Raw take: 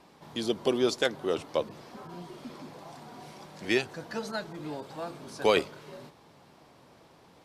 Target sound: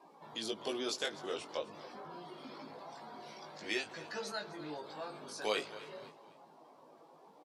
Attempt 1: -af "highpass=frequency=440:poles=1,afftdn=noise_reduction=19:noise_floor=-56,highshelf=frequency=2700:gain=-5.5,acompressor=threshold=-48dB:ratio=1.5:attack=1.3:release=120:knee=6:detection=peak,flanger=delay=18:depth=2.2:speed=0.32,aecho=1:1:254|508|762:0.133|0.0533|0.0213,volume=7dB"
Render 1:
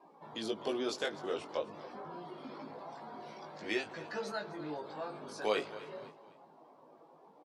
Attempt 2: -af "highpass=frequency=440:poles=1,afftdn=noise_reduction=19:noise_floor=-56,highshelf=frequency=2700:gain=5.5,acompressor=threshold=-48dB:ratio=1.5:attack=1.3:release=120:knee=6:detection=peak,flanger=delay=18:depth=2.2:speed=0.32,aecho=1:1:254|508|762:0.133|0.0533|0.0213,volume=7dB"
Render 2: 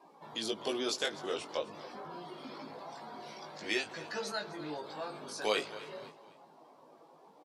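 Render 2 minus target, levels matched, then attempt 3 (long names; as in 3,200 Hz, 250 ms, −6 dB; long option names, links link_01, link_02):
downward compressor: peak gain reduction −3 dB
-af "highpass=frequency=440:poles=1,afftdn=noise_reduction=19:noise_floor=-56,highshelf=frequency=2700:gain=5.5,acompressor=threshold=-57.5dB:ratio=1.5:attack=1.3:release=120:knee=6:detection=peak,flanger=delay=18:depth=2.2:speed=0.32,aecho=1:1:254|508|762:0.133|0.0533|0.0213,volume=7dB"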